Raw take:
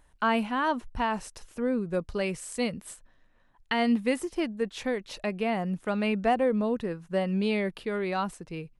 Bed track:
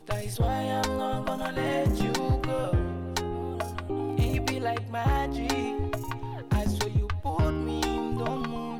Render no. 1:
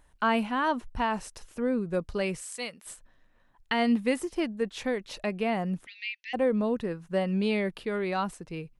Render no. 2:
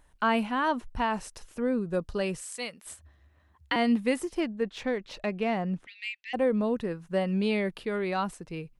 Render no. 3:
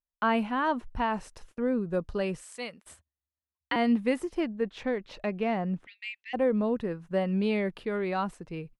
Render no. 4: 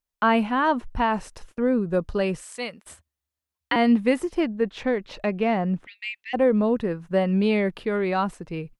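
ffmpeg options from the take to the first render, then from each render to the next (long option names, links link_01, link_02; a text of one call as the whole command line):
ffmpeg -i in.wav -filter_complex "[0:a]asplit=3[link_01][link_02][link_03];[link_01]afade=type=out:start_time=2.41:duration=0.02[link_04];[link_02]highpass=frequency=1200:poles=1,afade=type=in:start_time=2.41:duration=0.02,afade=type=out:start_time=2.85:duration=0.02[link_05];[link_03]afade=type=in:start_time=2.85:duration=0.02[link_06];[link_04][link_05][link_06]amix=inputs=3:normalize=0,asplit=3[link_07][link_08][link_09];[link_07]afade=type=out:start_time=5.85:duration=0.02[link_10];[link_08]asuperpass=centerf=3500:order=20:qfactor=0.79,afade=type=in:start_time=5.85:duration=0.02,afade=type=out:start_time=6.33:duration=0.02[link_11];[link_09]afade=type=in:start_time=6.33:duration=0.02[link_12];[link_10][link_11][link_12]amix=inputs=3:normalize=0" out.wav
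ffmpeg -i in.wav -filter_complex "[0:a]asettb=1/sr,asplit=3[link_01][link_02][link_03];[link_01]atrim=end=1.734[link_04];[link_02]atrim=start=1.73:end=2.39,asetpts=PTS-STARTPTS,afade=type=in:duration=0.004:curve=qsin,afade=type=out:start_time=0.656:duration=0.004:curve=qsin,bandreject=frequency=2200:width=6.2[link_05];[link_03]atrim=start=2.386[link_06];[link_04][link_05]acrossfade=duration=0.004:curve1=hsin:curve2=qsin[link_07];[link_07][link_06]acrossfade=duration=0.004:curve1=qsin:curve2=hsin,asettb=1/sr,asplit=3[link_08][link_09][link_10];[link_08]atrim=end=2.894[link_11];[link_09]atrim=start=2.89:end=3.76,asetpts=PTS-STARTPTS,afade=type=in:duration=0.004:curve=qsin,afade=type=out:start_time=0.866:duration=0.004:curve=qsin,afreqshift=59[link_12];[link_10]atrim=start=3.756[link_13];[link_11][link_12]acrossfade=duration=0.004:curve1=hsin:curve2=qsin[link_14];[link_14][link_13]acrossfade=duration=0.004:curve1=qsin:curve2=hsin,asettb=1/sr,asplit=3[link_15][link_16][link_17];[link_15]atrim=end=4.414[link_18];[link_16]atrim=start=4.41:end=6.31,asetpts=PTS-STARTPTS,afade=type=in:duration=0.004:curve=qsin,afade=type=out:start_time=1.896:duration=0.004:curve=qsin,adynamicsmooth=sensitivity=3.5:basefreq=5600[link_19];[link_17]atrim=start=6.306[link_20];[link_18][link_19]acrossfade=duration=0.004:curve1=hsin:curve2=qsin[link_21];[link_21][link_20]acrossfade=duration=0.004:curve1=qsin:curve2=hsin" out.wav
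ffmpeg -i in.wav -af "agate=range=-37dB:threshold=-48dB:ratio=16:detection=peak,highshelf=frequency=4100:gain=-9.5" out.wav
ffmpeg -i in.wav -af "volume=6dB" out.wav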